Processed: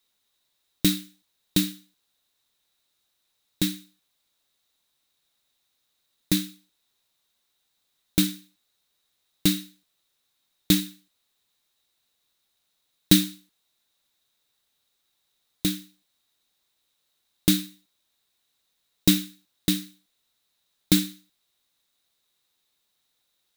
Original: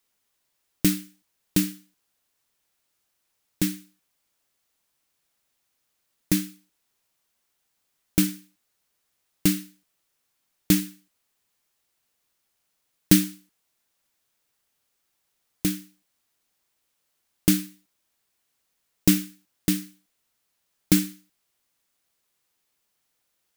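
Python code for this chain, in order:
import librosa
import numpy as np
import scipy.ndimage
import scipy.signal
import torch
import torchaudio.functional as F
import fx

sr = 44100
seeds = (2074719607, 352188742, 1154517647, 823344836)

y = fx.peak_eq(x, sr, hz=3800.0, db=14.5, octaves=0.24)
y = F.gain(torch.from_numpy(y), -1.0).numpy()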